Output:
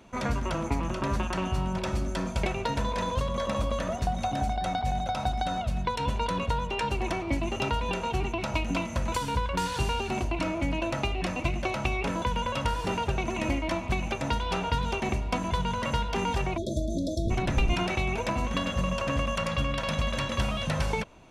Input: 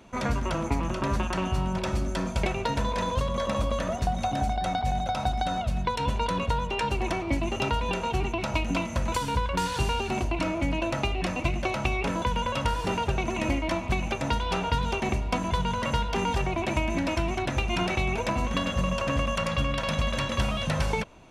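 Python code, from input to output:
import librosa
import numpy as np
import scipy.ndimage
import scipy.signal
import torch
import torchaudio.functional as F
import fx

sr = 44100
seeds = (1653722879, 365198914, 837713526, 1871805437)

y = fx.octave_divider(x, sr, octaves=1, level_db=4.0, at=(17.25, 17.74))
y = fx.spec_erase(y, sr, start_s=16.57, length_s=0.74, low_hz=670.0, high_hz=3300.0)
y = F.gain(torch.from_numpy(y), -1.5).numpy()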